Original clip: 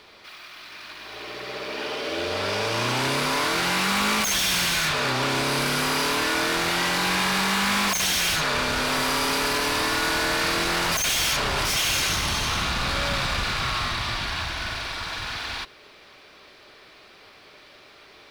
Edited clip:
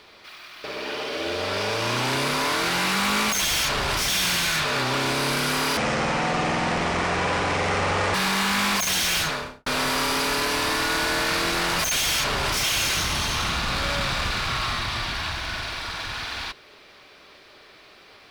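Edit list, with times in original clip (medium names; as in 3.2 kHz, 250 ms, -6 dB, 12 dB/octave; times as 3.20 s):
0.64–1.56 s: delete
6.06–7.27 s: speed 51%
8.33–8.79 s: studio fade out
11.13–11.76 s: copy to 4.37 s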